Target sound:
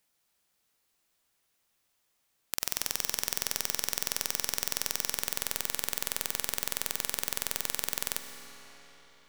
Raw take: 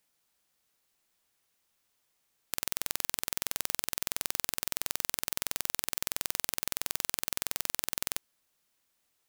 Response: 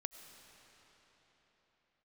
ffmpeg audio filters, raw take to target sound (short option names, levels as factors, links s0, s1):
-filter_complex "[0:a]asettb=1/sr,asplit=3[s0][s1][s2];[s0]atrim=end=2.574[s3];[s1]atrim=start=2.57:end=5.13,asetpts=PTS-STARTPTS,afade=t=in:d=0.004:c=qsin,afade=t=out:st=2.556:d=0.004:c=qsin,equalizer=f=5600:w=5.3:g=8.5[s4];[s2]atrim=start=5.126[s5];[s3][s4]acrossfade=d=0.004:c1=hsin:c2=qsin[s6];[s6][s5]acrossfade=d=0.004:c1=qsin:c2=hsin[s7];[1:a]atrim=start_sample=2205[s8];[s7][s8]afir=irnorm=-1:irlink=0,volume=1.58"